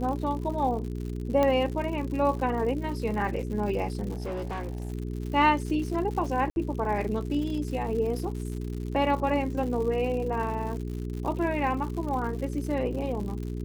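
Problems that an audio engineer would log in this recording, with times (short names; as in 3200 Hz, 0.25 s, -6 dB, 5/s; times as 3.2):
crackle 130/s -35 dBFS
hum 60 Hz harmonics 7 -33 dBFS
1.43 pop -13 dBFS
4.13–4.92 clipped -29 dBFS
6.5–6.56 gap 61 ms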